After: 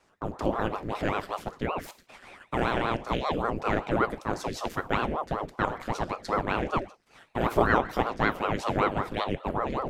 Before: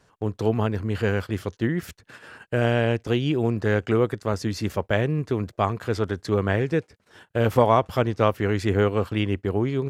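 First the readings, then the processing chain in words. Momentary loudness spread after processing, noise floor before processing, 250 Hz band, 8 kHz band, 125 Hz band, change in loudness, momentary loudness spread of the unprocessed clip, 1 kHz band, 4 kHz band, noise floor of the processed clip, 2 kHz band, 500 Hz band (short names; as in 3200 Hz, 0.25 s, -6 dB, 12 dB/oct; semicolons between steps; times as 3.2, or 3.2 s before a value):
7 LU, -64 dBFS, -6.5 dB, -3.5 dB, -11.0 dB, -5.0 dB, 6 LU, +0.5 dB, -3.5 dB, -64 dBFS, -1.5 dB, -6.5 dB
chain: low shelf 160 Hz -5.5 dB; non-linear reverb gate 0.18 s falling, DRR 10.5 dB; ring modulator with a swept carrier 510 Hz, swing 85%, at 5.2 Hz; gain -1.5 dB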